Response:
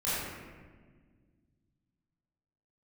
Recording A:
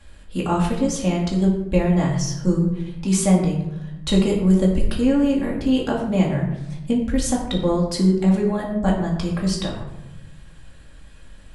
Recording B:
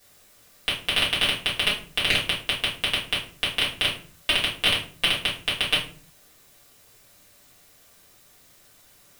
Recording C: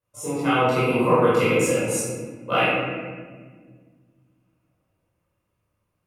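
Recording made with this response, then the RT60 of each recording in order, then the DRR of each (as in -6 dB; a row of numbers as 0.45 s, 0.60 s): C; 0.95 s, 0.45 s, 1.6 s; -3.0 dB, -7.5 dB, -12.5 dB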